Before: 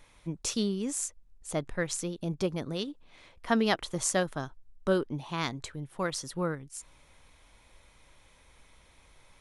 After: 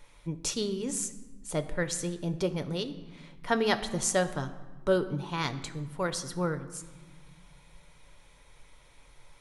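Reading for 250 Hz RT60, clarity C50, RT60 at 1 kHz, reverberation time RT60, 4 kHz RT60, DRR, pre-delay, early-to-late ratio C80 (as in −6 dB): 2.2 s, 13.5 dB, 1.3 s, 1.3 s, 0.90 s, 8.5 dB, 6 ms, 15.0 dB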